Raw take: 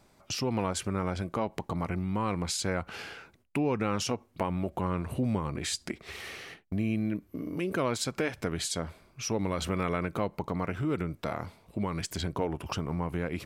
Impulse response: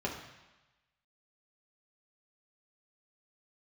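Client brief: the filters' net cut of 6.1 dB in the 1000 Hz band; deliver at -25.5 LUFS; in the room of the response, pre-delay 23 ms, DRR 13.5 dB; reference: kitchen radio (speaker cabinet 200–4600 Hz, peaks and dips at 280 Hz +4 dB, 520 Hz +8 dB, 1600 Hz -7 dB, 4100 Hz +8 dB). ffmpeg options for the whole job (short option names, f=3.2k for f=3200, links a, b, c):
-filter_complex "[0:a]equalizer=f=1k:t=o:g=-7.5,asplit=2[a][b];[1:a]atrim=start_sample=2205,adelay=23[c];[b][c]afir=irnorm=-1:irlink=0,volume=-19dB[d];[a][d]amix=inputs=2:normalize=0,highpass=200,equalizer=f=280:t=q:w=4:g=4,equalizer=f=520:t=q:w=4:g=8,equalizer=f=1.6k:t=q:w=4:g=-7,equalizer=f=4.1k:t=q:w=4:g=8,lowpass=f=4.6k:w=0.5412,lowpass=f=4.6k:w=1.3066,volume=7dB"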